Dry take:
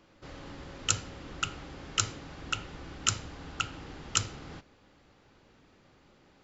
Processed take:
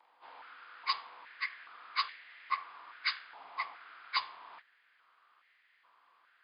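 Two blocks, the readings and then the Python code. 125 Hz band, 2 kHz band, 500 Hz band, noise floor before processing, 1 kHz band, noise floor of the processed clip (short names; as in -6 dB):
under -40 dB, +0.5 dB, -15.5 dB, -62 dBFS, +2.0 dB, -70 dBFS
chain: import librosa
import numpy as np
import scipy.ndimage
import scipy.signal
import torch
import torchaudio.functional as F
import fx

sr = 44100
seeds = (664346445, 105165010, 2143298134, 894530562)

y = fx.partial_stretch(x, sr, pct=88)
y = fx.filter_held_highpass(y, sr, hz=2.4, low_hz=870.0, high_hz=1900.0)
y = y * librosa.db_to_amplitude(-4.5)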